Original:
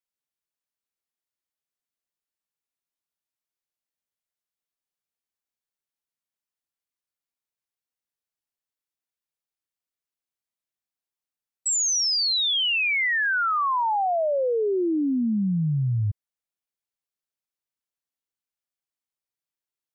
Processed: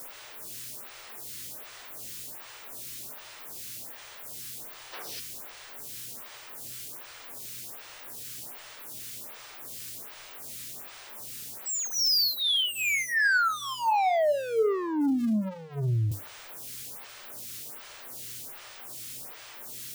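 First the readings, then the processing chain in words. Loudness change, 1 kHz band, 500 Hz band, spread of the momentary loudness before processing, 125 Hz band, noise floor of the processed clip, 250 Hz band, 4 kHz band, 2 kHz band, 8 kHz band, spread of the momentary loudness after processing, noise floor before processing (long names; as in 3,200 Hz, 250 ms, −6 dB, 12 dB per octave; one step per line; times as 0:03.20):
−8.0 dB, −3.0 dB, −2.5 dB, 5 LU, −4.5 dB, −47 dBFS, −4.0 dB, −2.5 dB, −2.0 dB, can't be measured, 18 LU, below −85 dBFS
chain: converter with a step at zero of −36.5 dBFS
gain on a spectral selection 0:04.93–0:05.19, 290–6,100 Hz +9 dB
low-shelf EQ 96 Hz −7 dB
mains-hum notches 50/100/150/200/250/300 Hz
leveller curve on the samples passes 2
hum with harmonics 120 Hz, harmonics 5, −56 dBFS −6 dB per octave
tuned comb filter 150 Hz, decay 0.58 s, harmonics all, mix 60%
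phaser with staggered stages 1.3 Hz
level +4.5 dB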